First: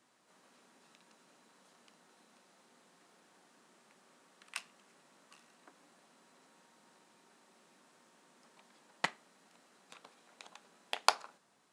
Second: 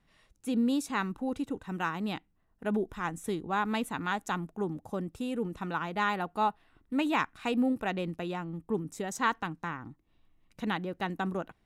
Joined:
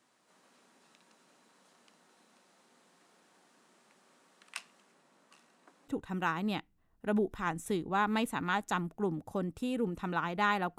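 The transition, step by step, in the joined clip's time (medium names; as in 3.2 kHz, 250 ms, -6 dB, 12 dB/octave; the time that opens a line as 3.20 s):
first
4.54–5.88 s: tape noise reduction on one side only decoder only
5.88 s: go over to second from 1.46 s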